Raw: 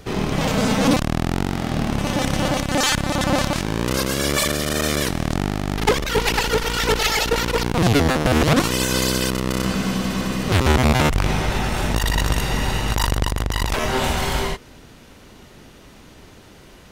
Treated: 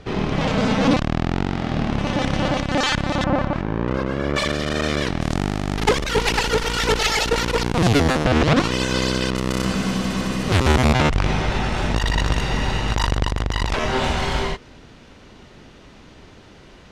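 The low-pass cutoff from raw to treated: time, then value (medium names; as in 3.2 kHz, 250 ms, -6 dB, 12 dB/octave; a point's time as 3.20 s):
4.3 kHz
from 3.24 s 1.6 kHz
from 4.36 s 4.1 kHz
from 5.21 s 9.4 kHz
from 8.25 s 4.9 kHz
from 9.36 s 9.6 kHz
from 10.93 s 5.5 kHz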